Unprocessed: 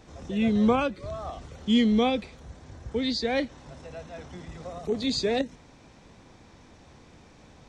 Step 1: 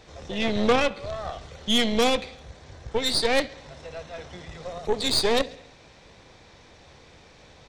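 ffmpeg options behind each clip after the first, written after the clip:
ffmpeg -i in.wav -af "equalizer=frequency=250:width_type=o:width=1:gain=-6,equalizer=frequency=500:width_type=o:width=1:gain=5,equalizer=frequency=2000:width_type=o:width=1:gain=4,equalizer=frequency=4000:width_type=o:width=1:gain=7,aecho=1:1:68|136|204|272|340:0.112|0.0662|0.0391|0.023|0.0136,aeval=exprs='0.335*(cos(1*acos(clip(val(0)/0.335,-1,1)))-cos(1*PI/2))+0.0531*(cos(4*acos(clip(val(0)/0.335,-1,1)))-cos(4*PI/2))+0.0841*(cos(6*acos(clip(val(0)/0.335,-1,1)))-cos(6*PI/2))':channel_layout=same" out.wav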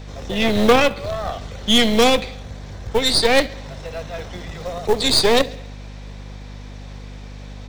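ffmpeg -i in.wav -filter_complex "[0:a]acrossover=split=110|550|7700[link_01][link_02][link_03][link_04];[link_02]acrusher=bits=4:mode=log:mix=0:aa=0.000001[link_05];[link_01][link_05][link_03][link_04]amix=inputs=4:normalize=0,aeval=exprs='val(0)+0.00891*(sin(2*PI*50*n/s)+sin(2*PI*2*50*n/s)/2+sin(2*PI*3*50*n/s)/3+sin(2*PI*4*50*n/s)/4+sin(2*PI*5*50*n/s)/5)':channel_layout=same,volume=7dB" out.wav

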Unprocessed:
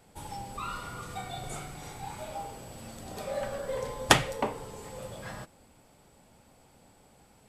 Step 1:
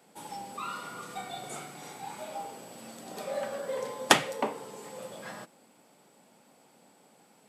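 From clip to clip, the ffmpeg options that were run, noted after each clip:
ffmpeg -i in.wav -af "highpass=frequency=180:width=0.5412,highpass=frequency=180:width=1.3066" out.wav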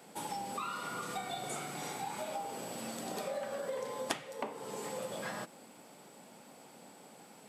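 ffmpeg -i in.wav -af "acompressor=threshold=-42dB:ratio=5,volume=5.5dB" out.wav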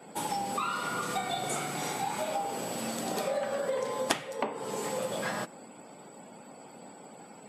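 ffmpeg -i in.wav -af "afftdn=noise_reduction=19:noise_floor=-63,volume=7dB" out.wav

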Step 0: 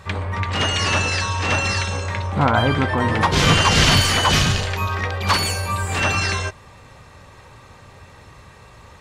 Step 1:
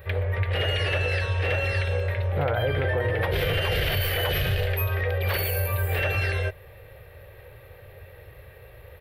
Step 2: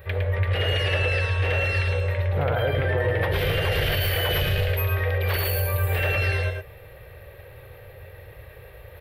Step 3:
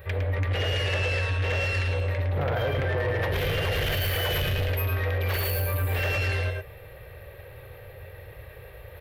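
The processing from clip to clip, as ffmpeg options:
ffmpeg -i in.wav -af "firequalizer=gain_entry='entry(100,0);entry(240,-21);entry(350,-4);entry(500,5);entry(1000,-16);entry(1700,-2);entry(3200,-6);entry(6700,-28);entry(13000,14)':delay=0.05:min_phase=1,alimiter=limit=-16dB:level=0:latency=1:release=49" out.wav
ffmpeg -i in.wav -af "areverse,acompressor=mode=upward:threshold=-40dB:ratio=2.5,areverse,aecho=1:1:109:0.562" out.wav
ffmpeg -i in.wav -af "asoftclip=type=tanh:threshold=-21dB" out.wav

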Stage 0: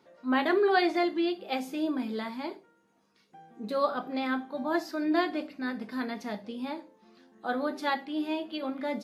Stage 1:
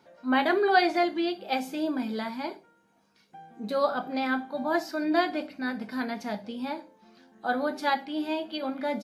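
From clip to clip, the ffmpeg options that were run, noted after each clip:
ffmpeg -i in.wav -af "aecho=1:1:1.3:0.31,volume=2.5dB" out.wav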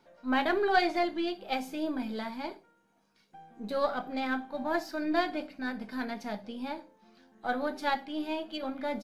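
ffmpeg -i in.wav -af "aeval=exprs='if(lt(val(0),0),0.708*val(0),val(0))':channel_layout=same,volume=-2.5dB" out.wav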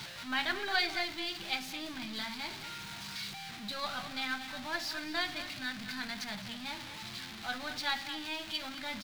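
ffmpeg -i in.wav -filter_complex "[0:a]aeval=exprs='val(0)+0.5*0.02*sgn(val(0))':channel_layout=same,equalizer=frequency=125:width_type=o:width=1:gain=11,equalizer=frequency=250:width_type=o:width=1:gain=-6,equalizer=frequency=500:width_type=o:width=1:gain=-12,equalizer=frequency=2000:width_type=o:width=1:gain=5,equalizer=frequency=4000:width_type=o:width=1:gain=11,asplit=2[link_01][link_02];[link_02]adelay=215.7,volume=-11dB,highshelf=frequency=4000:gain=-4.85[link_03];[link_01][link_03]amix=inputs=2:normalize=0,volume=-7dB" out.wav

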